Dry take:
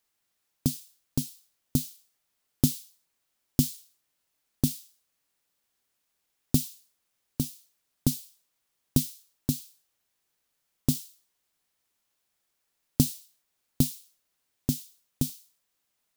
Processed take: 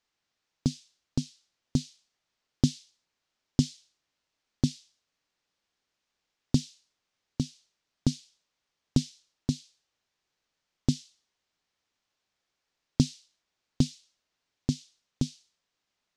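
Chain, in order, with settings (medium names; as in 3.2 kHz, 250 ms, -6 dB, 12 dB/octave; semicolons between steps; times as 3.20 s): low-pass 6.2 kHz 24 dB/octave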